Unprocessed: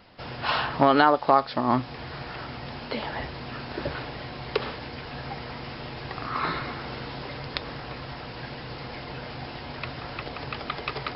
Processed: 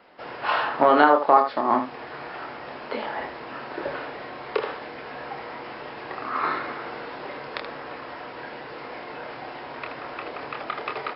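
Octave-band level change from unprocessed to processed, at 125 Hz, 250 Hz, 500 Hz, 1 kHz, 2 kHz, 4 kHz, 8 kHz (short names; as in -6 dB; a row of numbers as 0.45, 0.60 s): -13.0 dB, -1.0 dB, +3.0 dB, +3.5 dB, +2.0 dB, -4.5 dB, n/a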